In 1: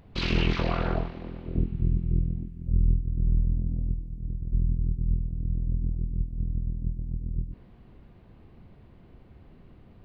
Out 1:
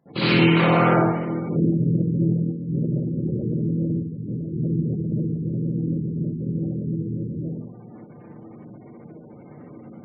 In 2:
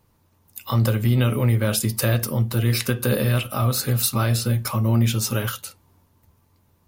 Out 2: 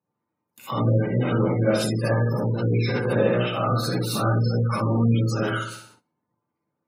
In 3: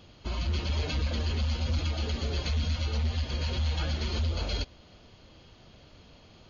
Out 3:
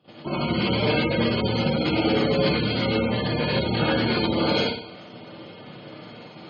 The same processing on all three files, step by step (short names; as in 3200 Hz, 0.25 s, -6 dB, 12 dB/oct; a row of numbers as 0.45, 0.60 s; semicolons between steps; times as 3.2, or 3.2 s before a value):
octaver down 1 oct, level -4 dB; soft clip -17 dBFS; LPF 2400 Hz 6 dB/oct; dynamic EQ 240 Hz, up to -5 dB, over -45 dBFS, Q 6.2; flutter echo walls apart 10.4 m, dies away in 0.62 s; non-linear reverb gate 0.1 s rising, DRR -5 dB; gate -49 dBFS, range -19 dB; spectral gate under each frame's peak -30 dB strong; HPF 140 Hz 24 dB/oct; match loudness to -23 LUFS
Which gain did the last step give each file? +8.0, -0.5, +9.5 dB